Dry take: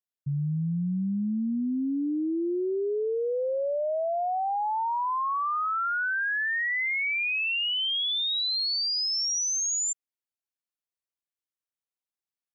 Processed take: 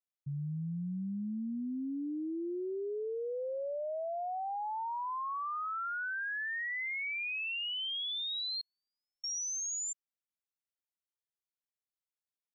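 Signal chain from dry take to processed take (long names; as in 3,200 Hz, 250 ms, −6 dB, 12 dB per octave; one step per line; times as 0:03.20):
0:08.61–0:09.24: low-pass filter 1,000 Hz 24 dB per octave
level −9 dB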